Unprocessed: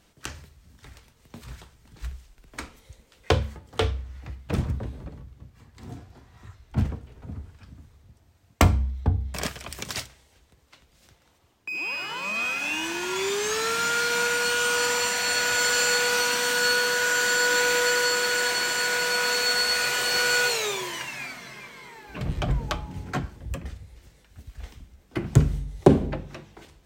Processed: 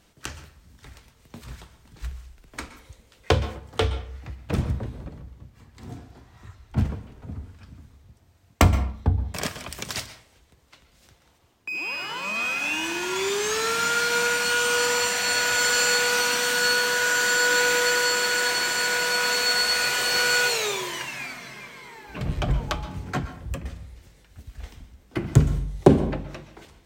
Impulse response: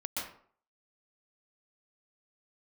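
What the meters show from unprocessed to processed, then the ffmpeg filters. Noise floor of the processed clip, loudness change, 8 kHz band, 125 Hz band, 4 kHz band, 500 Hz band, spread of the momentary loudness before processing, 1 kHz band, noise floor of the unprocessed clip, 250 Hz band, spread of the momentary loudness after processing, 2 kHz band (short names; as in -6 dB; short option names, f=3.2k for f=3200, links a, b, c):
-59 dBFS, +1.0 dB, +1.0 dB, +1.0 dB, +1.5 dB, +1.0 dB, 20 LU, +1.5 dB, -61 dBFS, +1.5 dB, 20 LU, +1.0 dB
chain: -filter_complex "[0:a]asplit=2[a][b];[1:a]atrim=start_sample=2205[c];[b][c]afir=irnorm=-1:irlink=0,volume=-14dB[d];[a][d]amix=inputs=2:normalize=0"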